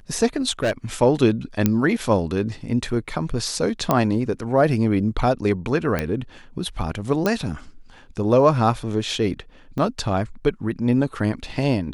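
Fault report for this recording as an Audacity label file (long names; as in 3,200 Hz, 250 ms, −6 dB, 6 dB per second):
0.620000	0.710000	clipping −16.5 dBFS
1.660000	1.660000	click −4 dBFS
3.910000	3.910000	click −5 dBFS
5.990000	5.990000	click −9 dBFS
7.260000	7.260000	click −8 dBFS
9.780000	9.780000	drop-out 3.3 ms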